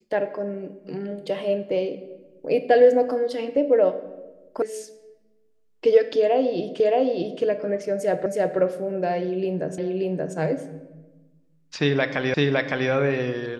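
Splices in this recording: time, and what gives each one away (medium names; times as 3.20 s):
4.62 s: sound stops dead
6.80 s: repeat of the last 0.62 s
8.26 s: repeat of the last 0.32 s
9.78 s: repeat of the last 0.58 s
12.34 s: repeat of the last 0.56 s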